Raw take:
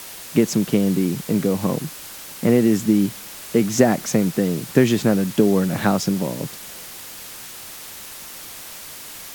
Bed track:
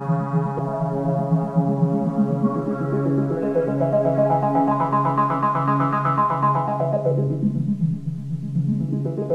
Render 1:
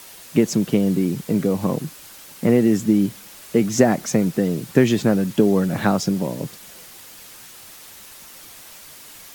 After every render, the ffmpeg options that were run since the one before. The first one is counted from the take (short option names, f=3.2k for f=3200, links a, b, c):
-af "afftdn=nr=6:nf=-37"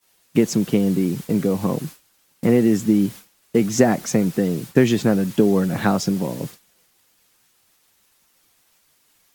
-af "agate=range=-33dB:threshold=-29dB:ratio=3:detection=peak,bandreject=f=600:w=19"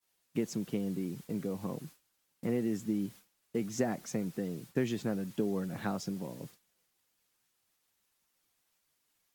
-af "volume=-16dB"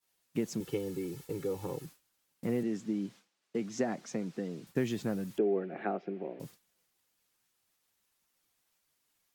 -filter_complex "[0:a]asettb=1/sr,asplit=3[a][b][c];[a]atrim=end=0.604[d];[b]atrim=start=0.6:end=1.86,asetpts=PTS-STARTPTS,afade=t=in:d=0.004:c=qsin,afade=t=out:st=1.256:d=0.004:c=qsin,aecho=1:1:2.3:0.9,atrim=end_sample=55566[e];[c]atrim=start=1.856[f];[d][e]acrossfade=d=0.004:c1=hsin:c2=qsin[g];[g][f]acrossfade=d=0.004:c1=qsin:c2=hsin,asettb=1/sr,asplit=3[h][i][j];[h]atrim=end=2.634[k];[i]atrim=start=2.63:end=4.67,asetpts=PTS-STARTPTS,afade=t=in:d=0.004:c=qsin,afade=t=out:st=2.036:d=0.004:c=qsin,acrossover=split=150 7500:gain=0.178 1 0.112[l][m][n];[l][m][n]amix=inputs=3:normalize=0[o];[j]atrim=start=4.666[p];[k][o]acrossfade=d=0.004:c1=hsin:c2=qsin[q];[q][p]acrossfade=d=0.004:c1=qsin:c2=hsin,asettb=1/sr,asplit=3[r][s][t];[r]atrim=end=5.384[u];[s]atrim=start=5.38:end=6.4,asetpts=PTS-STARTPTS,afade=t=in:d=0.004:c=qsin,afade=t=out:st=1.016:d=0.004:c=qsin,highpass=f=220:w=0.5412,highpass=f=220:w=1.3066,equalizer=f=250:t=q:w=4:g=-5,equalizer=f=380:t=q:w=4:g=10,equalizer=f=710:t=q:w=4:g=8,equalizer=f=1k:t=q:w=4:g=-8,equalizer=f=2.4k:t=q:w=4:g=5,lowpass=f=2.5k:w=0.5412,lowpass=f=2.5k:w=1.3066[v];[t]atrim=start=6.396[w];[u][v]acrossfade=d=0.004:c1=hsin:c2=qsin[x];[x][w]acrossfade=d=0.004:c1=qsin:c2=hsin"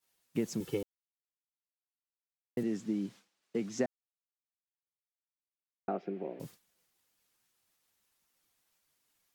-filter_complex "[0:a]asplit=5[a][b][c][d][e];[a]atrim=end=0.83,asetpts=PTS-STARTPTS,afade=t=out:st=0.826:d=0.004:c=hsin[f];[b]atrim=start=0.83:end=2.57,asetpts=PTS-STARTPTS,volume=0[g];[c]atrim=start=2.57:end=3.86,asetpts=PTS-STARTPTS,afade=t=in:d=0.004:c=hsin,afade=t=out:st=1.286:d=0.004:c=hsin[h];[d]atrim=start=3.86:end=5.88,asetpts=PTS-STARTPTS,volume=0[i];[e]atrim=start=5.88,asetpts=PTS-STARTPTS,afade=t=in:d=0.004:c=hsin[j];[f][g][h][i][j]concat=n=5:v=0:a=1"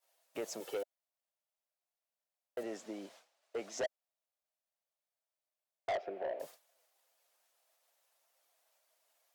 -af "highpass=f=620:t=q:w=4.9,asoftclip=type=tanh:threshold=-31.5dB"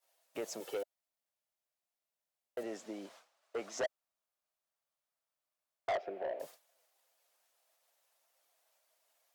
-filter_complex "[0:a]asettb=1/sr,asplit=3[a][b][c];[a]atrim=end=3.054[d];[b]atrim=start=3.05:end=5.98,asetpts=PTS-STARTPTS,afade=t=in:d=0.004:c=qsin,afade=t=out:st=2.926:d=0.004:c=qsin,equalizer=f=1.2k:t=o:w=0.77:g=6[e];[c]atrim=start=5.976[f];[d][e]acrossfade=d=0.004:c1=hsin:c2=qsin[g];[g][f]acrossfade=d=0.004:c1=qsin:c2=hsin"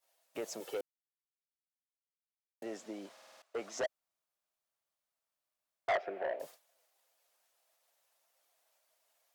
-filter_complex "[0:a]asettb=1/sr,asplit=3[a][b][c];[a]atrim=end=5.894[d];[b]atrim=start=5.89:end=6.36,asetpts=PTS-STARTPTS,afade=t=in:d=0.004:c=qsin,afade=t=out:st=0.466:d=0.004:c=qsin,equalizer=f=1.6k:w=0.86:g=8[e];[c]atrim=start=6.356[f];[d][e]acrossfade=d=0.004:c1=hsin:c2=qsin[g];[g][f]acrossfade=d=0.004:c1=qsin:c2=hsin,asplit=9[h][i][j][k][l][m][n][o][p];[h]atrim=end=0.81,asetpts=PTS-STARTPTS,afade=t=out:st=0.806:d=0.004:c=hsin[q];[i]atrim=start=0.81:end=2.62,asetpts=PTS-STARTPTS,volume=0[r];[j]atrim=start=2.62:end=3.172,asetpts=PTS-STARTPTS,afade=t=in:d=0.004:c=hsin[s];[k]atrim=start=3.118:end=3.172[t];[l]atrim=start=3.118:end=3.172[u];[m]atrim=start=3.118:end=3.172[v];[n]atrim=start=3.118:end=3.172[w];[o]atrim=start=3.118:end=3.172[x];[p]atrim=start=3.418[y];[q][r][s]concat=n=3:v=0:a=1[z];[z][t]acrossfade=d=0.004:c1=hsin:c2=hsin[aa];[aa][u]acrossfade=d=0.004:c1=hsin:c2=hsin[ab];[ab][v]acrossfade=d=0.004:c1=hsin:c2=hsin[ac];[ac][w]acrossfade=d=0.004:c1=hsin:c2=hsin[ad];[ad][x]acrossfade=d=0.004:c1=hsin:c2=hsin[ae];[ae][y]acrossfade=d=0.004:c1=hsin:c2=hsin"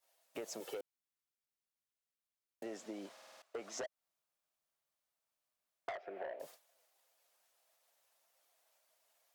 -af "acompressor=threshold=-40dB:ratio=16"